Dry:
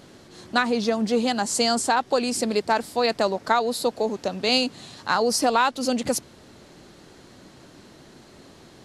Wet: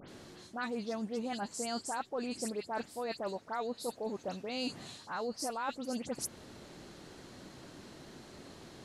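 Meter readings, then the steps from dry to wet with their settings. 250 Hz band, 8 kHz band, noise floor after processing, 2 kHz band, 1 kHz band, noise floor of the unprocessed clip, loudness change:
−13.0 dB, −13.5 dB, −56 dBFS, −16.5 dB, −16.0 dB, −50 dBFS, −15.0 dB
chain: dynamic equaliser 3,800 Hz, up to −4 dB, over −38 dBFS, Q 1.1
reversed playback
downward compressor 6 to 1, threshold −32 dBFS, peak gain reduction 16 dB
reversed playback
all-pass dispersion highs, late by 89 ms, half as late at 3,000 Hz
level −3 dB

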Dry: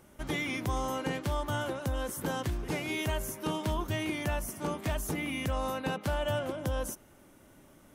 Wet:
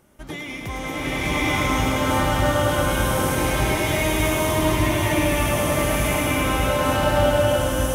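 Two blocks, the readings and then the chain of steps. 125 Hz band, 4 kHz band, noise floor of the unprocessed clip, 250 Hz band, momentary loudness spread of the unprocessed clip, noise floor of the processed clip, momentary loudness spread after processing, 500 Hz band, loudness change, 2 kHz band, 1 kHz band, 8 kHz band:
+12.0 dB, +13.5 dB, −58 dBFS, +12.0 dB, 2 LU, −33 dBFS, 8 LU, +13.5 dB, +13.0 dB, +13.5 dB, +13.5 dB, +14.0 dB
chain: feedback echo with a high-pass in the loop 104 ms, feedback 77%, high-pass 420 Hz, level −6 dB
slow-attack reverb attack 1,130 ms, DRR −12 dB

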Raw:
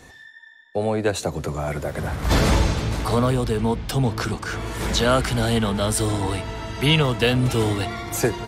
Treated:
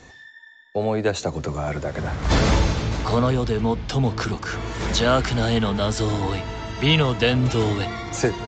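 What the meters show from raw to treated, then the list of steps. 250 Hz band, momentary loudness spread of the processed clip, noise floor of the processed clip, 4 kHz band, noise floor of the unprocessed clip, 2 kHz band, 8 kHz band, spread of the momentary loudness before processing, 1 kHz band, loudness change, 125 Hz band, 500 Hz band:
0.0 dB, 9 LU, −47 dBFS, 0.0 dB, −47 dBFS, 0.0 dB, −4.0 dB, 9 LU, 0.0 dB, 0.0 dB, 0.0 dB, 0.0 dB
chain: downsampling to 16,000 Hz

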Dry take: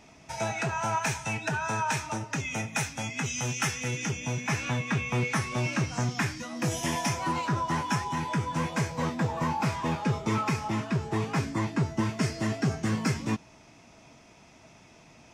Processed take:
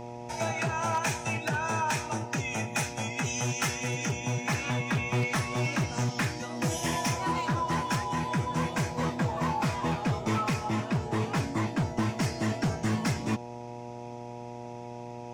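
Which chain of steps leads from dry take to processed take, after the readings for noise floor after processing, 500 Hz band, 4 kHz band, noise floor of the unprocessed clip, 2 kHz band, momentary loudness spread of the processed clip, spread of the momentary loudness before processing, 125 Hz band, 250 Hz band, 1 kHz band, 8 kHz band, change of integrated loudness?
−41 dBFS, +1.0 dB, 0.0 dB, −55 dBFS, −0.5 dB, 13 LU, 3 LU, −0.5 dB, −0.5 dB, +0.5 dB, 0.0 dB, 0.0 dB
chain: wave folding −21 dBFS
hum with harmonics 120 Hz, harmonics 8, −41 dBFS −1 dB per octave

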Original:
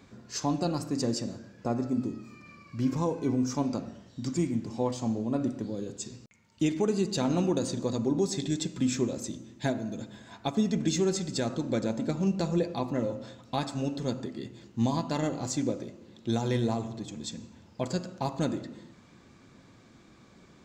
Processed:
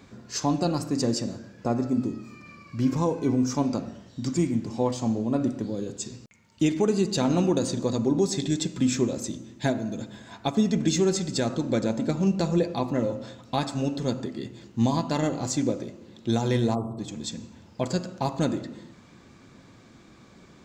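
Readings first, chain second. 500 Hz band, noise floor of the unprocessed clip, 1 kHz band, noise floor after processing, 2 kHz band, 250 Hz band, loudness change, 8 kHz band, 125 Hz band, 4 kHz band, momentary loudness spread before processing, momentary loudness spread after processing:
+4.0 dB, −57 dBFS, +4.0 dB, −53 dBFS, +4.0 dB, +4.0 dB, +4.0 dB, +4.0 dB, +4.0 dB, +4.0 dB, 12 LU, 12 LU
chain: gain on a spectral selection 0:16.75–0:16.99, 1,400–7,800 Hz −25 dB
level +4 dB

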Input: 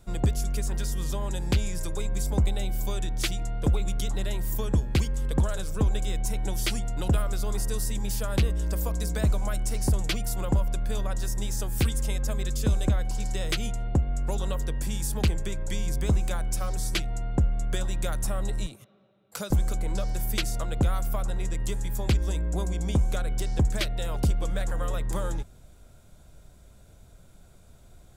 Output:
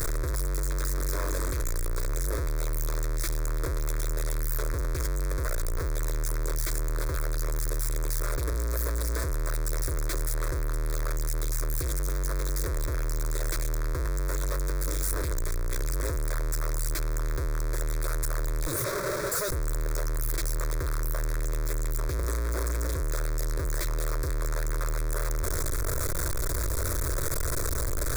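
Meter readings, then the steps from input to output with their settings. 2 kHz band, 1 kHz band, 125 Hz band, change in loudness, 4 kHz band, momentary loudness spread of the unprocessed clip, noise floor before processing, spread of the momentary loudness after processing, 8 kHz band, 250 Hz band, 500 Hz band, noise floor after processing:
+1.5 dB, 0.0 dB, −3.5 dB, −1.5 dB, −5.0 dB, 5 LU, −53 dBFS, 2 LU, +2.5 dB, −7.5 dB, 0.0 dB, −29 dBFS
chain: sign of each sample alone
phaser with its sweep stopped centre 790 Hz, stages 6

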